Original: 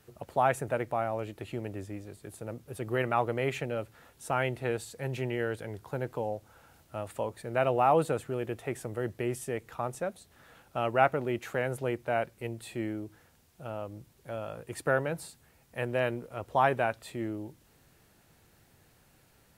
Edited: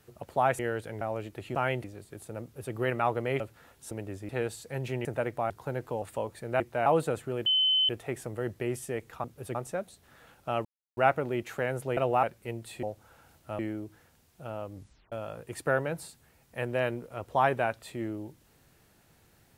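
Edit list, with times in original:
0.59–1.04 s: swap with 5.34–5.76 s
1.58–1.96 s: swap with 4.29–4.58 s
2.54–2.85 s: copy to 9.83 s
3.52–3.78 s: delete
6.28–7.04 s: move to 12.79 s
7.62–7.88 s: swap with 11.93–12.19 s
8.48 s: add tone 3.05 kHz -21.5 dBFS 0.43 s
10.93 s: insert silence 0.32 s
13.94 s: tape stop 0.38 s

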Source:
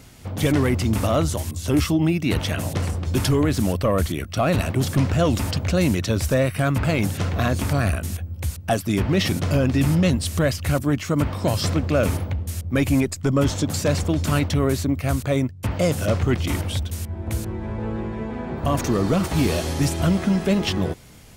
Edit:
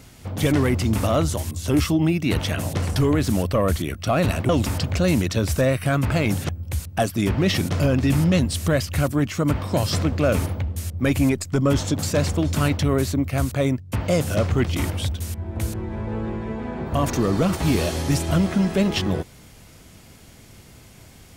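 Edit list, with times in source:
2.96–3.26 s: delete
4.79–5.22 s: delete
7.22–8.20 s: delete

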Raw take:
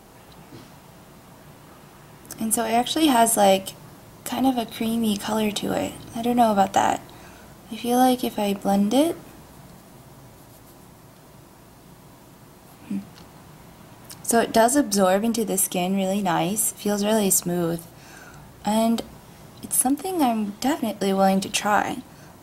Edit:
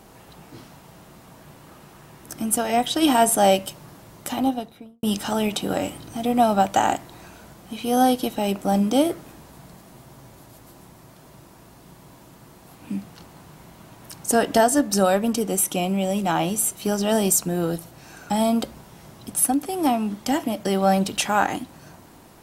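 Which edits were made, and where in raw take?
4.28–5.03 s: studio fade out
18.30–18.66 s: delete

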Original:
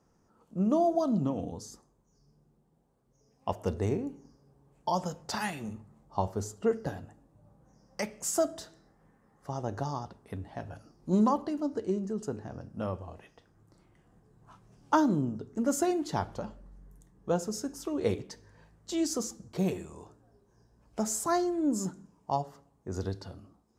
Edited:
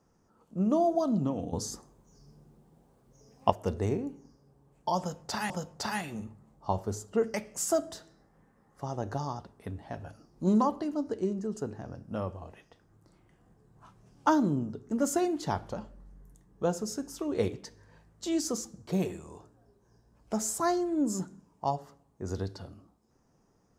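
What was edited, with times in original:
1.53–3.50 s: gain +9 dB
4.99–5.50 s: loop, 2 plays
6.83–8.00 s: delete

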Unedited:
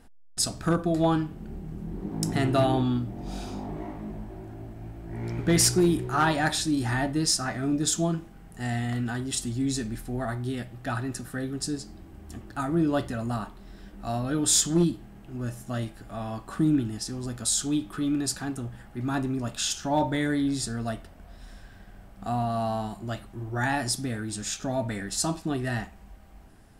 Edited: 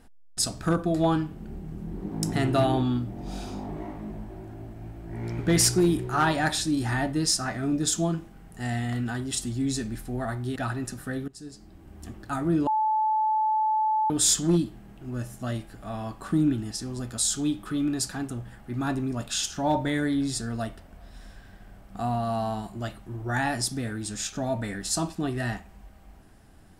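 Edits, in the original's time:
10.56–10.83 s: delete
11.55–12.29 s: fade in, from -21.5 dB
12.94–14.37 s: bleep 868 Hz -21 dBFS

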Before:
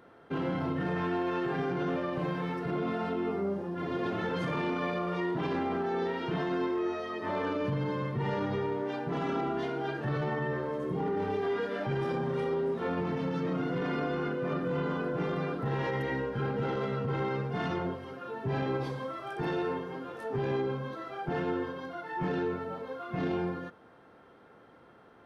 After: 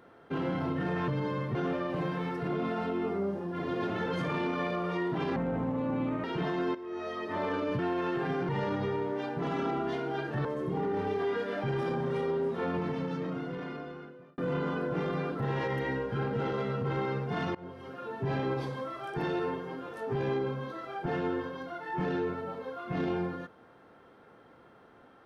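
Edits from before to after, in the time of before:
1.08–1.78 s: swap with 7.72–8.19 s
5.59–6.17 s: speed 66%
6.68–7.01 s: fade in quadratic, from -12.5 dB
10.15–10.68 s: delete
12.99–14.61 s: fade out
17.78–18.17 s: fade in, from -22.5 dB

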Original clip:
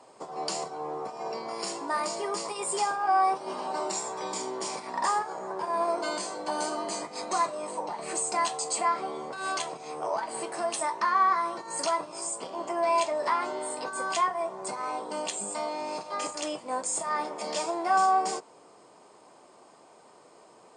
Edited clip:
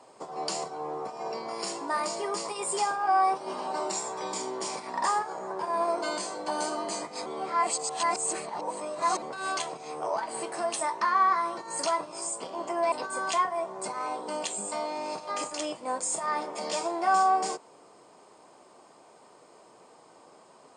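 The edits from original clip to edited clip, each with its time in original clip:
7.26–9.22 s: reverse
12.92–13.75 s: delete

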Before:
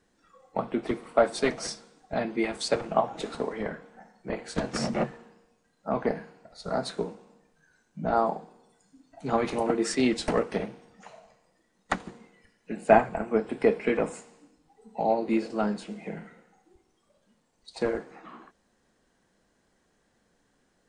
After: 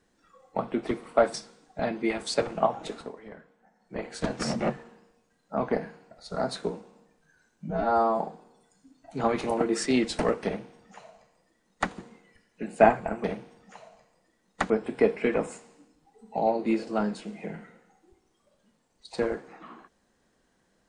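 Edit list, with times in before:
1.34–1.68 s: delete
3.14–4.41 s: dip -12.5 dB, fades 0.34 s
8.04–8.29 s: stretch 2×
10.55–12.01 s: copy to 13.33 s

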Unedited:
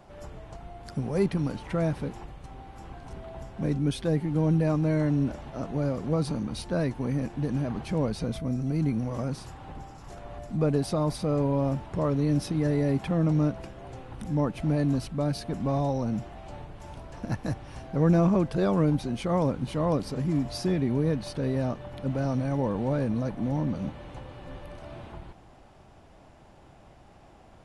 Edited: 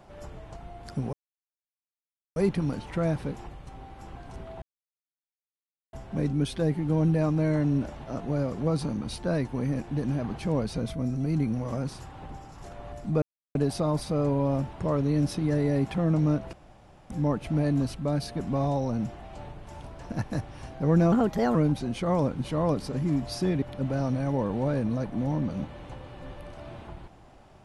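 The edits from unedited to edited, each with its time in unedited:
1.13 s: insert silence 1.23 s
3.39 s: insert silence 1.31 s
10.68 s: insert silence 0.33 s
13.66–14.23 s: room tone
18.25–18.78 s: speed 123%
20.85–21.87 s: delete

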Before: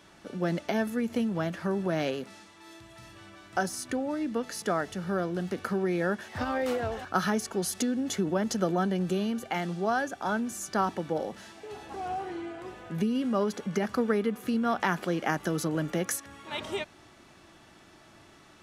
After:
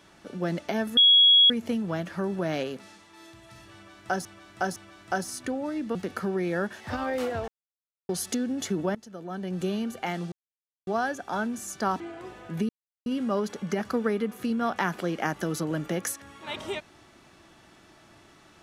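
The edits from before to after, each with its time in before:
0.97 s: add tone 3.33 kHz -13.5 dBFS 0.53 s
3.21–3.72 s: loop, 3 plays
4.40–5.43 s: delete
6.96–7.57 s: mute
8.43–9.13 s: fade in quadratic, from -18.5 dB
9.80 s: insert silence 0.55 s
10.93–12.41 s: delete
13.10 s: insert silence 0.37 s

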